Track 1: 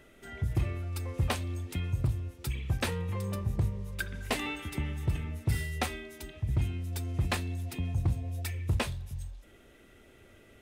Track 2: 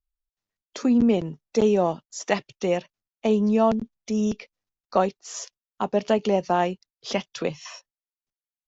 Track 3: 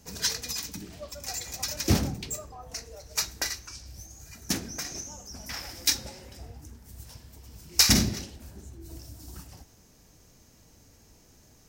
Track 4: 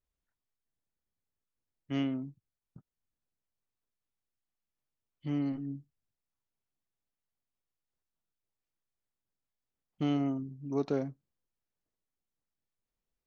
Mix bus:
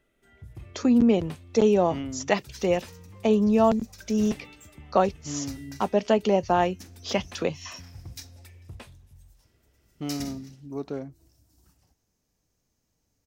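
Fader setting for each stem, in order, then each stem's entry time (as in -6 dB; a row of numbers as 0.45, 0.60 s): -14.0, 0.0, -18.5, -2.0 dB; 0.00, 0.00, 2.30, 0.00 s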